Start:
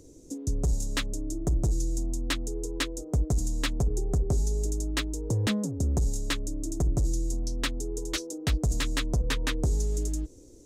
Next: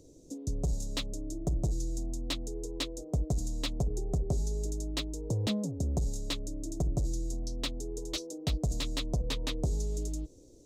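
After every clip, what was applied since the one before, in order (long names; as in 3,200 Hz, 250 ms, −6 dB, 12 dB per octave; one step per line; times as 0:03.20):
graphic EQ with 15 bands 160 Hz +4 dB, 630 Hz +6 dB, 1,600 Hz −11 dB, 4,000 Hz +5 dB, 10,000 Hz −3 dB
level −5.5 dB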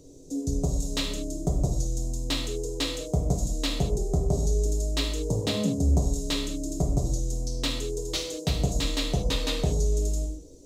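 reverb whose tail is shaped and stops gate 240 ms falling, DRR −0.5 dB
level +4 dB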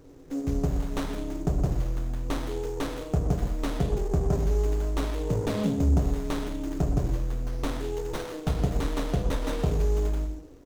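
far-end echo of a speakerphone 120 ms, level −9 dB
windowed peak hold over 17 samples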